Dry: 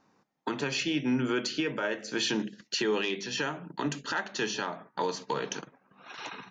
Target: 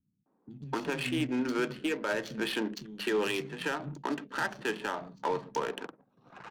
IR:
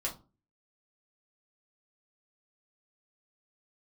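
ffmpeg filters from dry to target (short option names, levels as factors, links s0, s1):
-filter_complex "[0:a]acrossover=split=200|4300[s0][s1][s2];[s2]adelay=30[s3];[s1]adelay=260[s4];[s0][s4][s3]amix=inputs=3:normalize=0,adynamicsmooth=sensitivity=7:basefreq=660"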